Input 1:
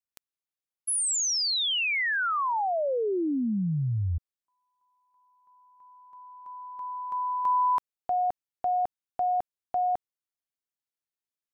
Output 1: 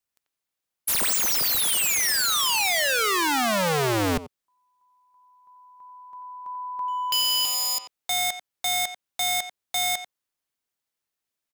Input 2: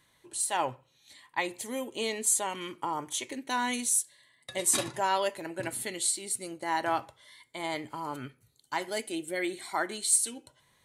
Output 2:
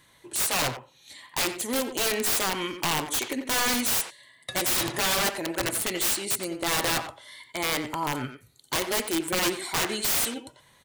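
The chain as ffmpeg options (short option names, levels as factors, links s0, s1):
-filter_complex "[0:a]aeval=exprs='(mod(22.4*val(0)+1,2)-1)/22.4':c=same,asplit=2[s0][s1];[s1]adelay=90,highpass=300,lowpass=3400,asoftclip=type=hard:threshold=0.0141,volume=0.501[s2];[s0][s2]amix=inputs=2:normalize=0,volume=2.37"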